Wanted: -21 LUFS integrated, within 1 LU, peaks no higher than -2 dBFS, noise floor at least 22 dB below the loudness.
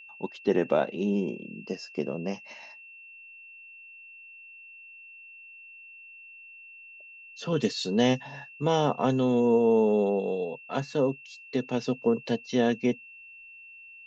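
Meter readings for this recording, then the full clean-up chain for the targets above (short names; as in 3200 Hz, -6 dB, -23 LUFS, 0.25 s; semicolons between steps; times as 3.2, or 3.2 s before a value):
steady tone 2700 Hz; tone level -46 dBFS; loudness -27.5 LUFS; peak -11.0 dBFS; loudness target -21.0 LUFS
-> notch 2700 Hz, Q 30; gain +6.5 dB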